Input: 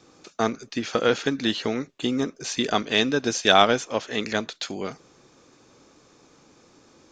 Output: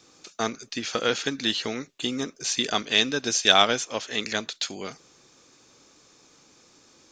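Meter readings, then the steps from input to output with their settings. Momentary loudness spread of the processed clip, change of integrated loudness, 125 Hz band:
13 LU, -0.5 dB, -5.5 dB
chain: high shelf 2100 Hz +11 dB; gain -5.5 dB

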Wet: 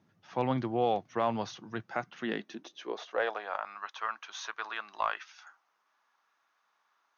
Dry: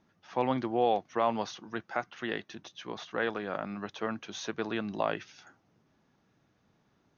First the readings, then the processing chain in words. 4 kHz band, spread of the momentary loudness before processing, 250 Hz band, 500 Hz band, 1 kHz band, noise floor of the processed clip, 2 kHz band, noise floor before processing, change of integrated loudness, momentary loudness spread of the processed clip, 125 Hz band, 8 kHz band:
-1.5 dB, 12 LU, -2.0 dB, -2.0 dB, -0.5 dB, -76 dBFS, 0.0 dB, -72 dBFS, -1.5 dB, 11 LU, +2.5 dB, n/a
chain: high-pass sweep 110 Hz -> 1100 Hz, 1.85–3.73; added harmonics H 4 -29 dB, 6 -36 dB, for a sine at -13.5 dBFS; gain -2 dB

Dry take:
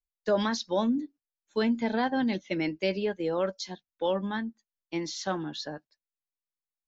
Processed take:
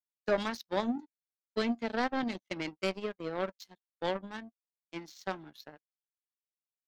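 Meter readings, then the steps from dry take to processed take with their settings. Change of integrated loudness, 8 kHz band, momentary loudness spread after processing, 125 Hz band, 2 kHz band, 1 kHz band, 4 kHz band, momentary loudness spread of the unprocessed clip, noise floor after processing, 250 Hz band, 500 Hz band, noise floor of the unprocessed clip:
-5.0 dB, n/a, 18 LU, -7.5 dB, -3.0 dB, -4.0 dB, -5.5 dB, 11 LU, under -85 dBFS, -7.0 dB, -5.5 dB, under -85 dBFS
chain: power-law curve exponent 2

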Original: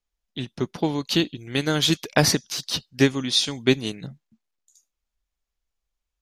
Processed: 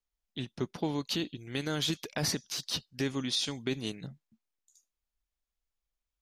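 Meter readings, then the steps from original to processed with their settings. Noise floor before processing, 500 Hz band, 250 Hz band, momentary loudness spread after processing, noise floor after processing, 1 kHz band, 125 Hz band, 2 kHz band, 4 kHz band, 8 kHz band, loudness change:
-84 dBFS, -12.0 dB, -10.5 dB, 11 LU, under -85 dBFS, -11.5 dB, -10.5 dB, -12.0 dB, -9.5 dB, -9.5 dB, -10.5 dB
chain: limiter -14 dBFS, peak gain reduction 11.5 dB; gain -6.5 dB

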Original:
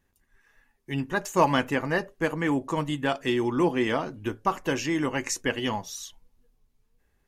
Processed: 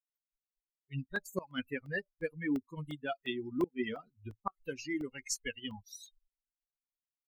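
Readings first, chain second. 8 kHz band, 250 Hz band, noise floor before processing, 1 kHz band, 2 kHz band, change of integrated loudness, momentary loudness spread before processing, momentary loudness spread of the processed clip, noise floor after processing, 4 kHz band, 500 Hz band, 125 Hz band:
-8.0 dB, -10.5 dB, -72 dBFS, -17.5 dB, -10.0 dB, -11.5 dB, 10 LU, 10 LU, under -85 dBFS, -10.5 dB, -12.5 dB, -12.0 dB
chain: per-bin expansion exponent 3; flipped gate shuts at -17 dBFS, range -25 dB; crackling interface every 0.35 s, samples 64, zero, from 0.81; gain -3 dB

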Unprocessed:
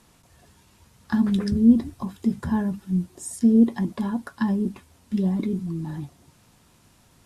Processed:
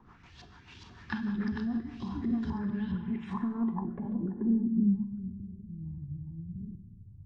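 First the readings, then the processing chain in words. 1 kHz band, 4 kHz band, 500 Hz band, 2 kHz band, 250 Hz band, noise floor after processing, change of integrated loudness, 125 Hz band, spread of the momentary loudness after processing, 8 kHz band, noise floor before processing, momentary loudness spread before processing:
-6.5 dB, n/a, -12.5 dB, -5.0 dB, -9.0 dB, -55 dBFS, -9.5 dB, -7.5 dB, 17 LU, under -25 dB, -58 dBFS, 14 LU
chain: reverse delay 0.675 s, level 0 dB; soft clip -12.5 dBFS, distortion -14 dB; notch 660 Hz, Q 12; LFO low-pass saw up 2.4 Hz 900–4200 Hz; bell 190 Hz -2.5 dB; compressor 6:1, threshold -34 dBFS, peak gain reduction 16.5 dB; Schroeder reverb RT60 1.3 s, combs from 31 ms, DRR 5.5 dB; rotary speaker horn 6.7 Hz, later 0.75 Hz, at 1.71; low-pass sweep 6000 Hz -> 100 Hz, 2.6–5.35; bell 550 Hz -13 dB 0.46 oct; gain +3.5 dB

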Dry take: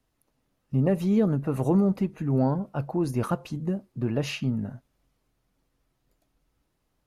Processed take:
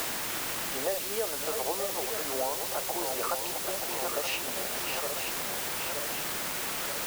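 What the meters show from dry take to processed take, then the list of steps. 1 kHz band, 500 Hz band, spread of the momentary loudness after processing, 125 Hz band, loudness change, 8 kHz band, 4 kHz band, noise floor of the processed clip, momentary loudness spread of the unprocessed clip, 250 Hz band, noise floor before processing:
+3.5 dB, -3.0 dB, 1 LU, -23.0 dB, -4.0 dB, +18.5 dB, +11.0 dB, -34 dBFS, 8 LU, -17.5 dB, -75 dBFS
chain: regenerating reverse delay 0.462 s, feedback 72%, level -7 dB; HPF 520 Hz 24 dB/oct; requantised 6-bit, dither triangular; three-band squash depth 70%; gain +1 dB

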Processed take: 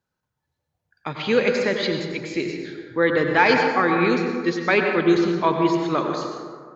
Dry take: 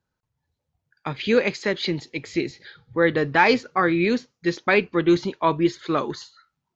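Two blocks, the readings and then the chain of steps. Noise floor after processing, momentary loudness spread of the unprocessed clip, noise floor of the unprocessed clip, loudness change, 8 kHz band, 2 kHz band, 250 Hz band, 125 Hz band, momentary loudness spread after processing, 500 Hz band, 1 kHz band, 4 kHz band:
-81 dBFS, 12 LU, -82 dBFS, +1.5 dB, n/a, +2.0 dB, +1.5 dB, +0.5 dB, 13 LU, +2.0 dB, +2.0 dB, +1.0 dB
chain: low shelf 110 Hz -8.5 dB; plate-style reverb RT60 1.8 s, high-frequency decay 0.4×, pre-delay 80 ms, DRR 2.5 dB

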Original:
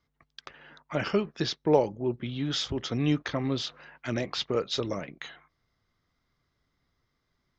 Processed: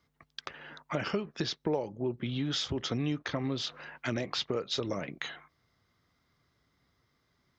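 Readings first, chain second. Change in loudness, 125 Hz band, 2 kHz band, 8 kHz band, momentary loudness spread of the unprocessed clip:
-4.5 dB, -3.5 dB, -1.0 dB, n/a, 19 LU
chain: HPF 64 Hz; compressor 4:1, threshold -34 dBFS, peak gain reduction 15 dB; gain +4 dB

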